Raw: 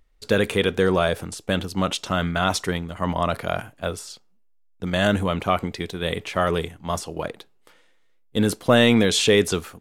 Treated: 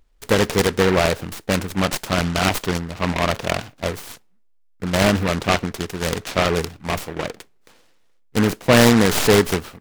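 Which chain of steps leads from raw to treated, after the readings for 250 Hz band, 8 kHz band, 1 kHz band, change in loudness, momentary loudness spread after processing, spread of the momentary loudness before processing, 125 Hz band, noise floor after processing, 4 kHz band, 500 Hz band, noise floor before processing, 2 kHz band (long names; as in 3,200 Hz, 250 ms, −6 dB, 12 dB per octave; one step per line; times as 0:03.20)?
+3.0 dB, +4.5 dB, +2.5 dB, +3.0 dB, 13 LU, 13 LU, +4.0 dB, −56 dBFS, +1.5 dB, +2.0 dB, −58 dBFS, +3.5 dB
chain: stylus tracing distortion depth 0.17 ms
short delay modulated by noise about 1,300 Hz, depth 0.13 ms
level +2.5 dB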